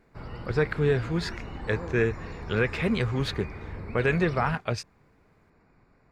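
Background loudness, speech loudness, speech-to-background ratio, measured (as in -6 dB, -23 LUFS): -39.5 LUFS, -28.0 LUFS, 11.5 dB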